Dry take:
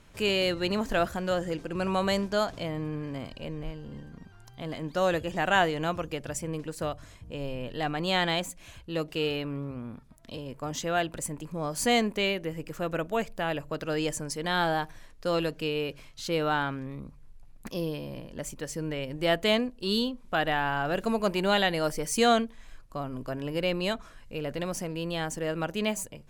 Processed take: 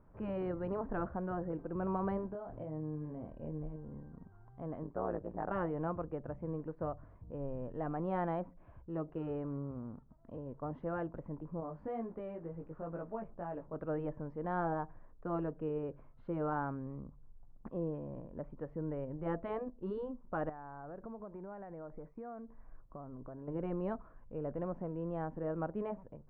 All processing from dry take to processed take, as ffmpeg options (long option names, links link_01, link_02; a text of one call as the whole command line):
ffmpeg -i in.wav -filter_complex "[0:a]asettb=1/sr,asplit=3[link_01][link_02][link_03];[link_01]atrim=end=2.304[link_04];[link_02]atrim=start=2.3:end=3.76,asetpts=PTS-STARTPTS,afade=type=in:duration=0.004:curve=qsin,afade=type=out:start_time=1.456:duration=0.004:curve=qsin,acompressor=threshold=-32dB:ratio=10:attack=3.2:release=140:knee=1:detection=peak,equalizer=frequency=1200:width=1.5:gain=-6,asplit=2[link_05][link_06];[link_06]adelay=26,volume=-4.5dB[link_07];[link_05][link_07]amix=inputs=2:normalize=0,atrim=end_sample=64386[link_08];[link_03]atrim=start=3.756[link_09];[link_04][link_08]acrossfade=duration=0.004:curve1=hsin:curve2=qsin[link_10];[link_10][link_09]acrossfade=duration=0.004:curve1=qsin:curve2=hsin,asettb=1/sr,asplit=3[link_11][link_12][link_13];[link_11]atrim=end=4.834[link_14];[link_12]atrim=start=4.83:end=5.51,asetpts=PTS-STARTPTS,afade=type=in:duration=0.004:curve=qsin,afade=type=out:start_time=0.676:duration=0.004:curve=qsin,lowpass=2100,tremolo=f=110:d=0.947[link_15];[link_13]atrim=start=5.506[link_16];[link_14][link_15]acrossfade=duration=0.004:curve1=hsin:curve2=qsin[link_17];[link_17][link_16]acrossfade=duration=0.004:curve1=qsin:curve2=hsin,asettb=1/sr,asplit=3[link_18][link_19][link_20];[link_18]atrim=end=11.604[link_21];[link_19]atrim=start=11.6:end=13.76,asetpts=PTS-STARTPTS,afade=type=in:duration=0.004:curve=qsin,afade=type=out:start_time=2.156:duration=0.004:curve=qsin,acompressor=threshold=-29dB:ratio=2:attack=3.2:release=140:knee=1:detection=peak,acrusher=bits=7:mix=0:aa=0.5,flanger=delay=17:depth=2.1:speed=2.1[link_22];[link_20]atrim=start=13.756[link_23];[link_21][link_22]acrossfade=duration=0.004:curve1=hsin:curve2=qsin[link_24];[link_24][link_23]acrossfade=duration=0.004:curve1=qsin:curve2=hsin,asettb=1/sr,asplit=3[link_25][link_26][link_27];[link_25]atrim=end=20.494[link_28];[link_26]atrim=start=20.49:end=23.48,asetpts=PTS-STARTPTS,afade=type=in:duration=0.004:curve=qsin,afade=type=out:start_time=2.986:duration=0.004:curve=qsin,asuperstop=centerf=3400:order=4:qfactor=1.7,acompressor=threshold=-37dB:ratio=8:attack=3.2:release=140:knee=1:detection=peak[link_29];[link_27]atrim=start=23.476[link_30];[link_28][link_29]acrossfade=duration=0.004:curve1=hsin:curve2=qsin[link_31];[link_31][link_30]acrossfade=duration=0.004:curve1=qsin:curve2=hsin,afftfilt=real='re*lt(hypot(re,im),0.355)':imag='im*lt(hypot(re,im),0.355)':win_size=1024:overlap=0.75,lowpass=frequency=1200:width=0.5412,lowpass=frequency=1200:width=1.3066,volume=-5.5dB" out.wav